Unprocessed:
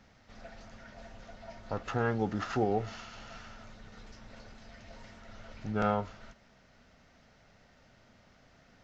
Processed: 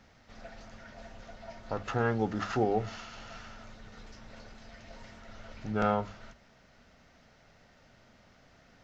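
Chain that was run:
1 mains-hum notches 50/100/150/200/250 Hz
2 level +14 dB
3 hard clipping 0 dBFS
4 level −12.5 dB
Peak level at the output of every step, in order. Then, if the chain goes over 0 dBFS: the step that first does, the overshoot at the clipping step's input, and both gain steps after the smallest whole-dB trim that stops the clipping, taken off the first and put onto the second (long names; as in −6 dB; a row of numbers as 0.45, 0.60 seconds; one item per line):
−16.0, −2.0, −2.0, −14.5 dBFS
no step passes full scale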